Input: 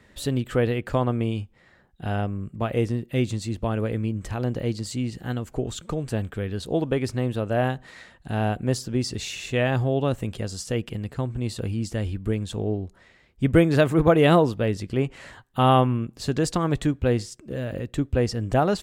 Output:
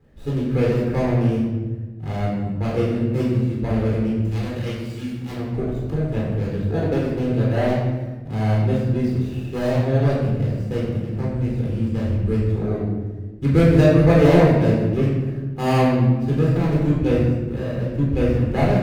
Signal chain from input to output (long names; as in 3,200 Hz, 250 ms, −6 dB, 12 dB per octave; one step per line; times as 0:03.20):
running median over 41 samples
0:04.22–0:05.32: tilt shelving filter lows −7.5 dB, about 1,200 Hz
rectangular room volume 810 cubic metres, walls mixed, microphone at 4 metres
level −4 dB